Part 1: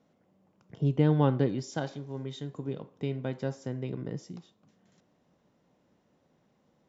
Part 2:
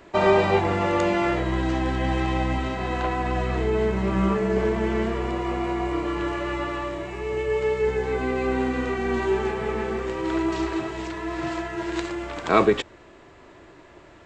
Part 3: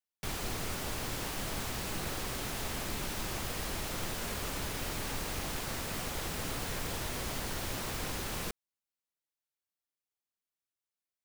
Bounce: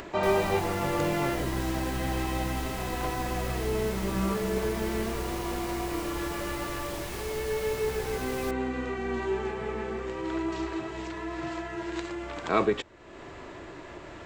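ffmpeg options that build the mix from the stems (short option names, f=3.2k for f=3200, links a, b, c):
-filter_complex "[0:a]volume=-11.5dB[a];[1:a]volume=-6.5dB[b];[2:a]volume=-2.5dB[c];[a][b][c]amix=inputs=3:normalize=0,acompressor=mode=upward:threshold=-31dB:ratio=2.5"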